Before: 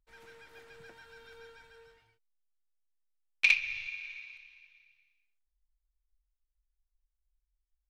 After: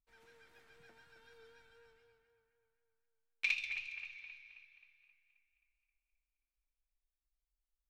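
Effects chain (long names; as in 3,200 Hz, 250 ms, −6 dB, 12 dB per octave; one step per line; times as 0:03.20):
tuned comb filter 240 Hz, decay 0.44 s, harmonics odd, mix 70%
echo with a time of its own for lows and highs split 2,600 Hz, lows 265 ms, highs 137 ms, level −7.5 dB
pitch vibrato 4 Hz 34 cents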